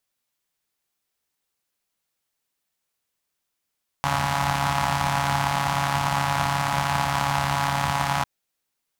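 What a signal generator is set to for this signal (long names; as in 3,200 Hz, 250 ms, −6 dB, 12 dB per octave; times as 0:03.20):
pulse-train model of a four-cylinder engine, steady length 4.20 s, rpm 4,200, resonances 89/150/860 Hz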